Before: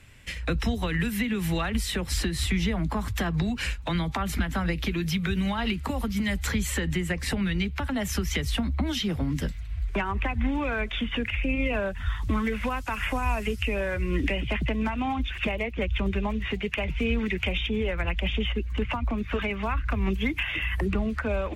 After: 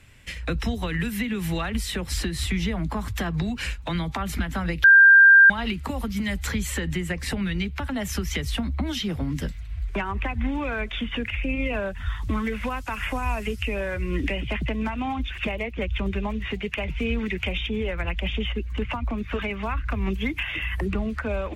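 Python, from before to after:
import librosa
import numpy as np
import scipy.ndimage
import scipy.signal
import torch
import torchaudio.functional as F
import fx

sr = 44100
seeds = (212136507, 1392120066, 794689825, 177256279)

y = fx.edit(x, sr, fx.bleep(start_s=4.84, length_s=0.66, hz=1590.0, db=-8.5), tone=tone)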